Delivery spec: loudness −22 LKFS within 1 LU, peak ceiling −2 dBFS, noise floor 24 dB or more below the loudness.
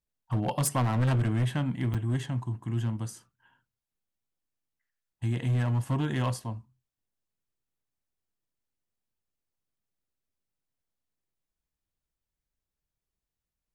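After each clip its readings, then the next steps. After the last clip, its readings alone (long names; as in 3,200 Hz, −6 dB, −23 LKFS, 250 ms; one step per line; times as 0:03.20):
share of clipped samples 1.6%; peaks flattened at −22.0 dBFS; number of dropouts 1; longest dropout 6.0 ms; integrated loudness −29.5 LKFS; sample peak −22.0 dBFS; target loudness −22.0 LKFS
→ clipped peaks rebuilt −22 dBFS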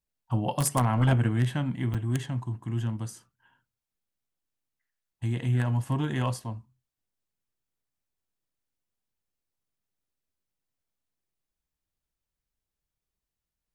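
share of clipped samples 0.0%; number of dropouts 1; longest dropout 6.0 ms
→ repair the gap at 0:01.94, 6 ms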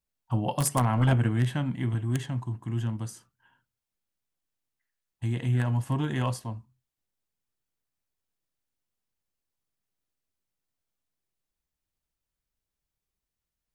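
number of dropouts 0; integrated loudness −28.5 LKFS; sample peak −13.0 dBFS; target loudness −22.0 LKFS
→ level +6.5 dB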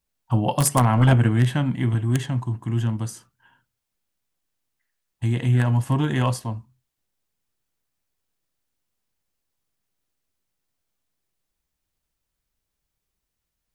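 integrated loudness −22.0 LKFS; sample peak −6.5 dBFS; background noise floor −81 dBFS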